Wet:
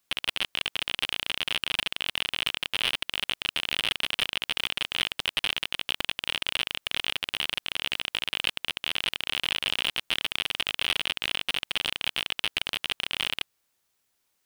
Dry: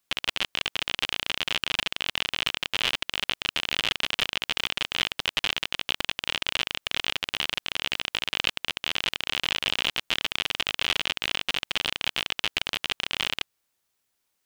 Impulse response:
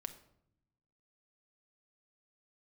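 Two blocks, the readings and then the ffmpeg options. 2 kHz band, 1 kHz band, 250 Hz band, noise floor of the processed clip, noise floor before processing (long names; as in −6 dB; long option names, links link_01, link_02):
−1.5 dB, −3.0 dB, −3.0 dB, −75 dBFS, −77 dBFS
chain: -af "asoftclip=type=tanh:threshold=-14dB,volume=2dB"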